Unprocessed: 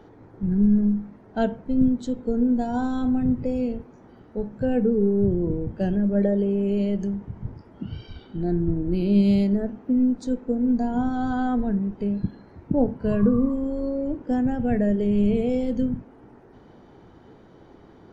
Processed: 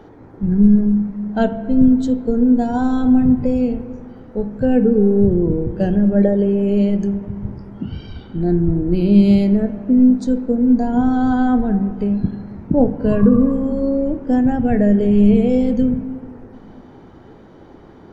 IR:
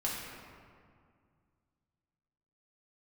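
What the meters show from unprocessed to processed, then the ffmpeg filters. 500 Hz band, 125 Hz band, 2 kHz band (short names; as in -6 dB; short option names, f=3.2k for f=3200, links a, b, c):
+6.5 dB, +7.0 dB, +6.0 dB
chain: -filter_complex "[0:a]asplit=2[a][b];[1:a]atrim=start_sample=2205,lowpass=2.9k[c];[b][c]afir=irnorm=-1:irlink=0,volume=-13.5dB[d];[a][d]amix=inputs=2:normalize=0,volume=5dB"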